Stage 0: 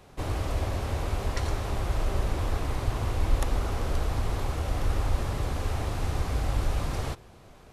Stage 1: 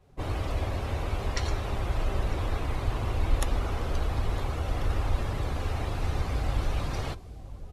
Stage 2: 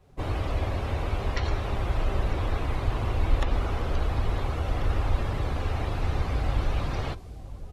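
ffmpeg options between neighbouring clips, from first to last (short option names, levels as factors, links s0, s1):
-af "aecho=1:1:955:0.188,afftdn=nr=12:nf=-44,adynamicequalizer=threshold=0.00178:dfrequency=2000:dqfactor=0.7:tfrequency=2000:tqfactor=0.7:attack=5:release=100:ratio=0.375:range=3.5:mode=boostabove:tftype=highshelf,volume=0.891"
-filter_complex "[0:a]acrossover=split=4500[s0][s1];[s1]acompressor=threshold=0.00126:ratio=4:attack=1:release=60[s2];[s0][s2]amix=inputs=2:normalize=0,volume=1.26"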